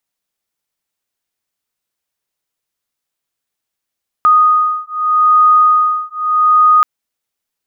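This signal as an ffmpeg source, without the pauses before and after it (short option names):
-f lavfi -i "aevalsrc='0.282*(sin(2*PI*1240*t)+sin(2*PI*1240.81*t))':d=2.58:s=44100"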